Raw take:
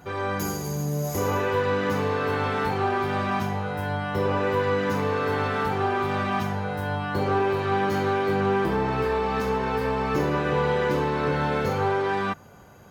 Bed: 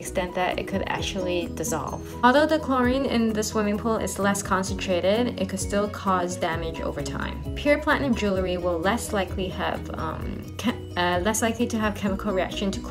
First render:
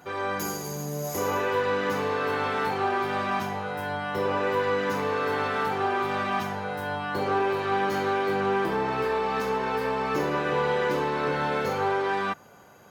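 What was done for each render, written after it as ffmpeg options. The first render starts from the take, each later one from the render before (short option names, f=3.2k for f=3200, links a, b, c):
-af "highpass=f=320:p=1"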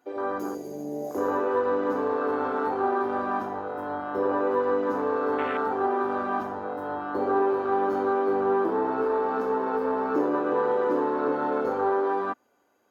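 -af "afwtdn=0.0447,lowshelf=f=210:t=q:w=3:g=-8"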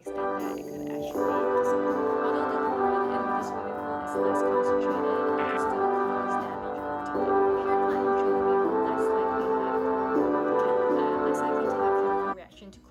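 -filter_complex "[1:a]volume=-20dB[a];[0:a][a]amix=inputs=2:normalize=0"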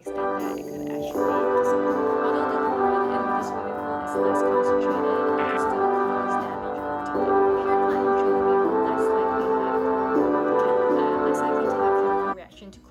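-af "volume=3.5dB"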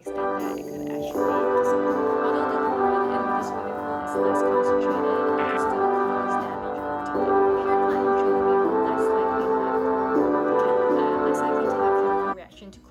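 -filter_complex "[0:a]asettb=1/sr,asplit=3[a][b][c];[a]atrim=end=3.534[d];[b]atrim=start=3.53:end=4.01,asetpts=PTS-STARTPTS,afade=t=in:d=0.004:c=qsin,afade=t=out:st=0.476:d=0.004:c=qsin,aeval=exprs='sgn(val(0))*max(abs(val(0))-0.00133,0)':c=same[e];[c]atrim=start=4.006[f];[d][e]acrossfade=d=0.004:c1=hsin:c2=qsin[g];[g][f]acrossfade=d=0.004:c1=qsin:c2=hsin,asettb=1/sr,asplit=3[h][i][j];[h]atrim=end=9.454[k];[i]atrim=start=9.45:end=10.49,asetpts=PTS-STARTPTS,afade=t=in:d=0.004:c=qsin,afade=t=out:st=1.036:d=0.004:c=qsin,equalizer=f=2.8k:t=o:w=0.25:g=-6.5[l];[j]atrim=start=10.486[m];[k][l]acrossfade=d=0.004:c1=hsin:c2=qsin[n];[n][m]acrossfade=d=0.004:c1=qsin:c2=hsin"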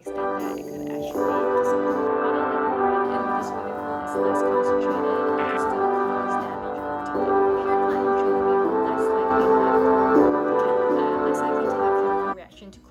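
-filter_complex "[0:a]asettb=1/sr,asplit=3[a][b][c];[a]atrim=end=2.074[d];[b]atrim=start=2.07:end=3.05,asetpts=PTS-STARTPTS,afade=t=in:d=0.004:c=qsin,afade=t=out:st=0.976:d=0.004:c=qsin,highshelf=f=4.1k:t=q:w=1.5:g=-13.5[e];[c]atrim=start=3.046[f];[d][e]acrossfade=d=0.004:c1=hsin:c2=qsin[g];[g][f]acrossfade=d=0.004:c1=qsin:c2=hsin,asettb=1/sr,asplit=3[h][i][j];[h]atrim=end=9.304[k];[i]atrim=start=9.3:end=10.3,asetpts=PTS-STARTPTS,afade=t=in:d=0.004:c=qsin,afade=t=out:st=0.996:d=0.004:c=qsin,acontrast=28[l];[j]atrim=start=10.296[m];[k][l]acrossfade=d=0.004:c1=hsin:c2=qsin[n];[n][m]acrossfade=d=0.004:c1=qsin:c2=hsin"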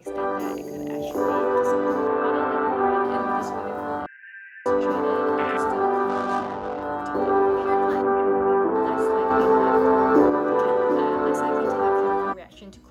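-filter_complex "[0:a]asettb=1/sr,asplit=3[a][b][c];[a]atrim=end=4.064[d];[b]atrim=start=4.06:end=4.66,asetpts=PTS-STARTPTS,afade=t=in:d=0.004:c=qsin,afade=t=out:st=0.596:d=0.004:c=qsin,asuperpass=centerf=2100:order=20:qfactor=1.7[e];[c]atrim=start=4.656[f];[d][e]acrossfade=d=0.004:c1=hsin:c2=qsin[g];[g][f]acrossfade=d=0.004:c1=qsin:c2=hsin,asettb=1/sr,asplit=3[h][i][j];[h]atrim=end=6.094[k];[i]atrim=start=6.09:end=6.83,asetpts=PTS-STARTPTS,afade=t=in:d=0.004:c=qsin,afade=t=out:st=0.736:d=0.004:c=qsin,adynamicsmooth=sensitivity=5.5:basefreq=1.2k[l];[j]atrim=start=6.826[m];[k][l]acrossfade=d=0.004:c1=hsin:c2=qsin[n];[n][m]acrossfade=d=0.004:c1=qsin:c2=hsin,asplit=3[o][p][q];[o]afade=t=out:st=8.01:d=0.02[r];[p]lowpass=f=2.5k:w=0.5412,lowpass=f=2.5k:w=1.3066,afade=t=in:st=8.01:d=0.02,afade=t=out:st=8.74:d=0.02[s];[q]afade=t=in:st=8.74:d=0.02[t];[r][s][t]amix=inputs=3:normalize=0"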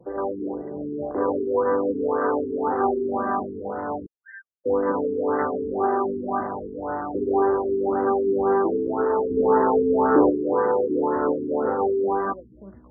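-af "afftfilt=real='re*lt(b*sr/1024,440*pow(2100/440,0.5+0.5*sin(2*PI*1.9*pts/sr)))':imag='im*lt(b*sr/1024,440*pow(2100/440,0.5+0.5*sin(2*PI*1.9*pts/sr)))':win_size=1024:overlap=0.75"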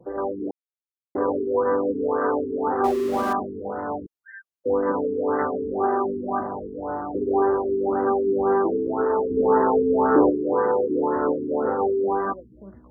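-filter_complex "[0:a]asettb=1/sr,asplit=3[a][b][c];[a]atrim=end=2.844[d];[b]atrim=start=2.84:end=3.33,asetpts=PTS-STARTPTS,afade=t=in:d=0.004:c=qsin,afade=t=out:st=0.486:d=0.004:c=qsin,aeval=exprs='val(0)+0.5*0.0282*sgn(val(0))':c=same[e];[c]atrim=start=3.326[f];[d][e]acrossfade=d=0.004:c1=hsin:c2=qsin[g];[g][f]acrossfade=d=0.004:c1=qsin:c2=hsin,asettb=1/sr,asplit=3[h][i][j];[h]atrim=end=6.394[k];[i]atrim=start=6.39:end=7.22,asetpts=PTS-STARTPTS,afade=t=in:d=0.004:c=qsin,afade=t=out:st=0.826:d=0.004:c=qsin,lowpass=1.3k[l];[j]atrim=start=7.216[m];[k][l]acrossfade=d=0.004:c1=hsin:c2=qsin[n];[n][m]acrossfade=d=0.004:c1=qsin:c2=hsin,asplit=3[o][p][q];[o]atrim=end=0.51,asetpts=PTS-STARTPTS,afade=t=out:st=0.506:d=0.004:c=hsin[r];[p]atrim=start=0.51:end=1.15,asetpts=PTS-STARTPTS,volume=0[s];[q]atrim=start=1.15,asetpts=PTS-STARTPTS,afade=t=in:d=0.004:c=hsin[t];[r][s][t]concat=n=3:v=0:a=1"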